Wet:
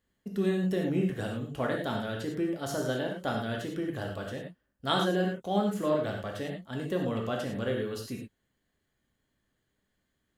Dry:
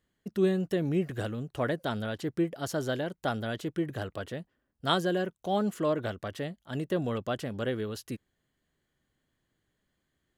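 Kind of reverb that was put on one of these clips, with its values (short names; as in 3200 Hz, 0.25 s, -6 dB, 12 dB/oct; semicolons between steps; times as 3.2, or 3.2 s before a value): non-linear reverb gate 0.13 s flat, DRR 0 dB; gain -2.5 dB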